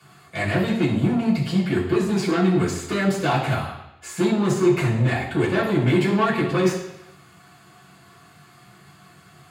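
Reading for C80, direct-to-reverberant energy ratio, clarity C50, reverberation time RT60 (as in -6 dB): 8.0 dB, -8.5 dB, 5.0 dB, 0.85 s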